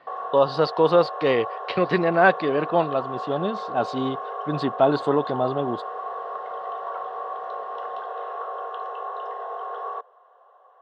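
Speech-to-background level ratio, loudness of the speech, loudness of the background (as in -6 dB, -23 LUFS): 9.5 dB, -23.0 LUFS, -32.5 LUFS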